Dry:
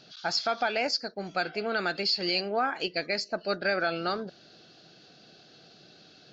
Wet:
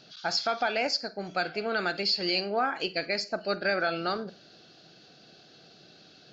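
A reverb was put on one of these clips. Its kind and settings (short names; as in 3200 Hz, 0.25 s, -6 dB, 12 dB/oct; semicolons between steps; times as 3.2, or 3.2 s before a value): Schroeder reverb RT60 0.33 s, combs from 33 ms, DRR 15.5 dB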